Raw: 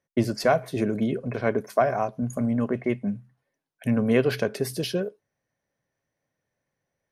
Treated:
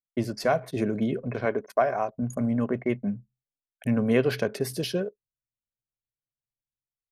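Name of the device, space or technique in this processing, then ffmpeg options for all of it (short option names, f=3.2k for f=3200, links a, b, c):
voice memo with heavy noise removal: -filter_complex "[0:a]asettb=1/sr,asplit=3[a][b][c];[a]atrim=end=1.454[d];[b]atrim=start=1.45:end=2.19,asetpts=PTS-STARTPTS,afade=t=in:d=0.004:c=qsin,afade=t=out:st=0.736:d=0.004:c=qsin,bass=f=250:g=-8,treble=f=4k:g=-3[e];[c]atrim=start=2.186[f];[d][e]acrossfade=d=0.004:c1=hsin:c2=qsin[g];[g][f]acrossfade=d=0.004:c1=qsin:c2=hsin,anlmdn=0.0631,dynaudnorm=f=110:g=9:m=4dB,volume=-5dB"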